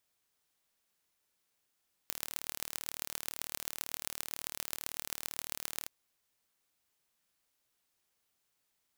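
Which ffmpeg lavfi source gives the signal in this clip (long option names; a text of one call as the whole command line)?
ffmpeg -f lavfi -i "aevalsrc='0.447*eq(mod(n,1161),0)*(0.5+0.5*eq(mod(n,5805),0))':duration=3.79:sample_rate=44100" out.wav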